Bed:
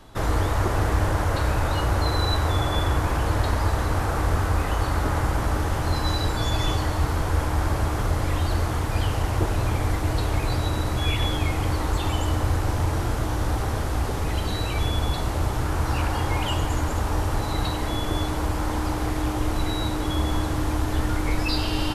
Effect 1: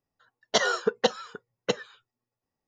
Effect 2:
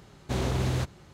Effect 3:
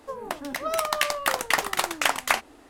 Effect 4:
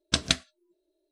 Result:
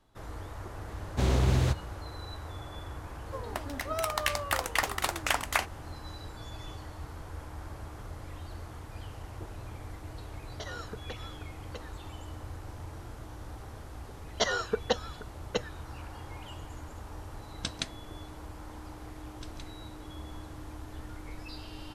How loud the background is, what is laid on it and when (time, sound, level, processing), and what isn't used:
bed -19 dB
0.88 s: add 2 + peaking EQ 62 Hz +7 dB
3.25 s: add 3 -5.5 dB
10.06 s: add 1 -10.5 dB + compression, threshold -27 dBFS
13.86 s: add 1 -5 dB
17.51 s: add 4 -11 dB
19.29 s: add 4 -16.5 dB + peak limiter -15.5 dBFS

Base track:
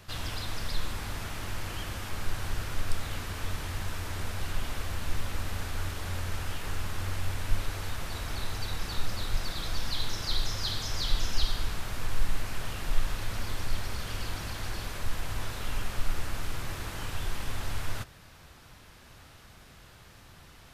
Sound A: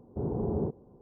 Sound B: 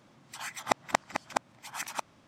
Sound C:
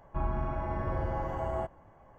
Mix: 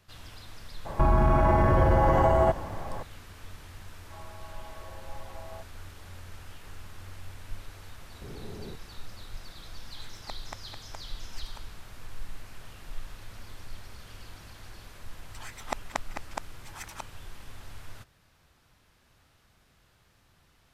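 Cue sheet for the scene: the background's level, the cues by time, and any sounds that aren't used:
base track -11.5 dB
0.85 s: add C -12.5 dB + loudness maximiser +31.5 dB
3.96 s: add C -11 dB + high-pass 430 Hz 24 dB/octave
8.05 s: add A -13 dB
9.58 s: add B -16.5 dB
15.01 s: add B -6 dB

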